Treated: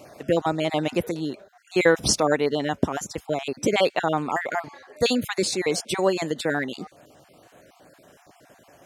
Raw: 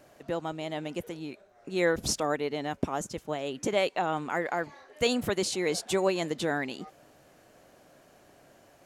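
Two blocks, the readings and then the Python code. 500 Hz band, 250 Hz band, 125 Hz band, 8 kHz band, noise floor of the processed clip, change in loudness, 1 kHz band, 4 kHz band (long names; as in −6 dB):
+6.0 dB, +6.5 dB, +6.5 dB, +6.5 dB, −57 dBFS, +6.0 dB, +5.5 dB, +6.0 dB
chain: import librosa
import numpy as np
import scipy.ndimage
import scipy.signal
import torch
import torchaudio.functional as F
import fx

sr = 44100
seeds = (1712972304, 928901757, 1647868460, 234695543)

y = fx.spec_dropout(x, sr, seeds[0], share_pct=29)
y = scipy.signal.sosfilt(scipy.signal.butter(2, 58.0, 'highpass', fs=sr, output='sos'), y)
y = fx.rider(y, sr, range_db=10, speed_s=2.0)
y = y * 10.0 ** (6.5 / 20.0)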